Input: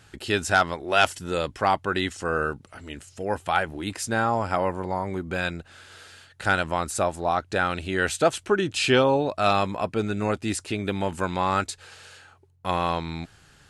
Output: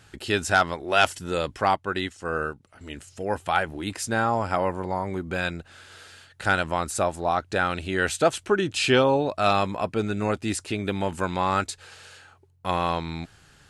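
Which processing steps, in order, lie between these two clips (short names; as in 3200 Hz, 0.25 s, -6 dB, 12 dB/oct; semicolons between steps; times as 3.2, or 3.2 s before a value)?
1.71–2.81 upward expander 1.5:1, over -37 dBFS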